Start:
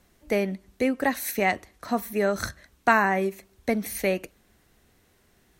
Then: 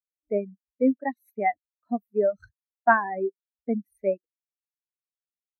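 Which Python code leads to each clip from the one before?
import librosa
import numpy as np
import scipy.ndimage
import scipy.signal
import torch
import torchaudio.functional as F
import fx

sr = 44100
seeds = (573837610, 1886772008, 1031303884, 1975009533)

y = fx.dereverb_blind(x, sr, rt60_s=0.85)
y = fx.spectral_expand(y, sr, expansion=2.5)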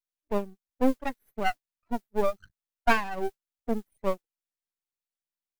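y = fx.mod_noise(x, sr, seeds[0], snr_db=29)
y = np.maximum(y, 0.0)
y = y * 10.0 ** (1.0 / 20.0)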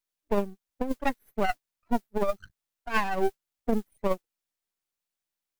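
y = fx.over_compress(x, sr, threshold_db=-25.0, ratio=-0.5)
y = y * 10.0 ** (2.5 / 20.0)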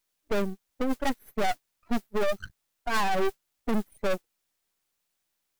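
y = 10.0 ** (-27.5 / 20.0) * np.tanh(x / 10.0 ** (-27.5 / 20.0))
y = y * 10.0 ** (9.0 / 20.0)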